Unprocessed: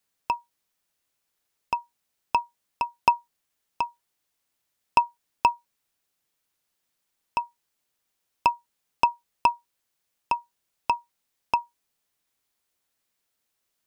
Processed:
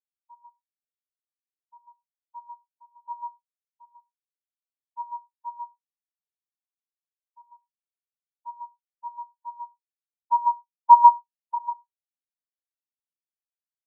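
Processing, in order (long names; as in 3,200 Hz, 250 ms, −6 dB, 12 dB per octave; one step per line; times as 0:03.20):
hard clipping −18.5 dBFS, distortion −8 dB
0:10.32–0:11.55: parametric band 1,000 Hz +8.5 dB
single-tap delay 148 ms −3.5 dB
four-comb reverb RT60 0.67 s, combs from 26 ms, DRR 1.5 dB
every bin expanded away from the loudest bin 4 to 1
level +6 dB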